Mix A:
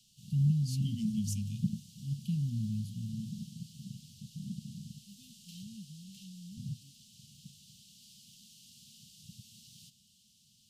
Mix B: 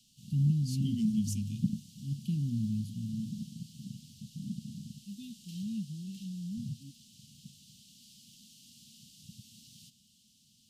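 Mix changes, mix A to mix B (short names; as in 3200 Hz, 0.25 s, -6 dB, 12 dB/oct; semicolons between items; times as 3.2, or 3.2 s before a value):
second voice +8.0 dB; master: add band shelf 640 Hz +12 dB 2.9 oct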